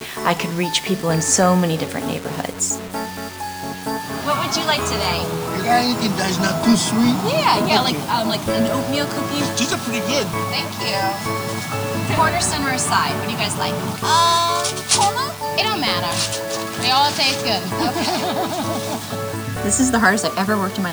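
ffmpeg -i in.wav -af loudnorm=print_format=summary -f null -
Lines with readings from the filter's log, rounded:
Input Integrated:    -19.1 LUFS
Input True Peak:      -2.1 dBTP
Input LRA:             3.2 LU
Input Threshold:     -29.1 LUFS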